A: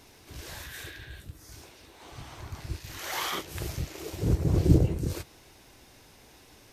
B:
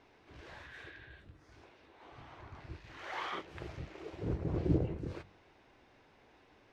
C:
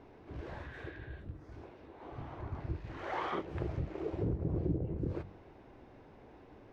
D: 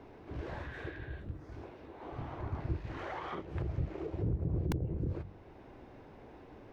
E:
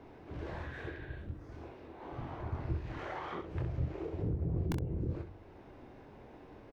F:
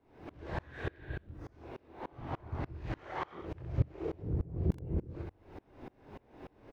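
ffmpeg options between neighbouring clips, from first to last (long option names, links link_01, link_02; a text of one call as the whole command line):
ffmpeg -i in.wav -af "lowpass=2300,lowshelf=frequency=190:gain=-8,bandreject=frequency=47.69:width_type=h:width=4,bandreject=frequency=95.38:width_type=h:width=4,bandreject=frequency=143.07:width_type=h:width=4,bandreject=frequency=190.76:width_type=h:width=4,bandreject=frequency=238.45:width_type=h:width=4,volume=-5dB" out.wav
ffmpeg -i in.wav -af "tiltshelf=frequency=1200:gain=8.5,acompressor=threshold=-34dB:ratio=6,volume=3dB" out.wav
ffmpeg -i in.wav -filter_complex "[0:a]acrossover=split=160[link_01][link_02];[link_01]aeval=exprs='(mod(25.1*val(0)+1,2)-1)/25.1':channel_layout=same[link_03];[link_02]alimiter=level_in=10.5dB:limit=-24dB:level=0:latency=1:release=475,volume=-10.5dB[link_04];[link_03][link_04]amix=inputs=2:normalize=0,volume=3dB" out.wav
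ffmpeg -i in.wav -af "aecho=1:1:24|65:0.376|0.398,volume=-1.5dB" out.wav
ffmpeg -i in.wav -af "aeval=exprs='val(0)*pow(10,-29*if(lt(mod(-3.4*n/s,1),2*abs(-3.4)/1000),1-mod(-3.4*n/s,1)/(2*abs(-3.4)/1000),(mod(-3.4*n/s,1)-2*abs(-3.4)/1000)/(1-2*abs(-3.4)/1000))/20)':channel_layout=same,volume=9dB" out.wav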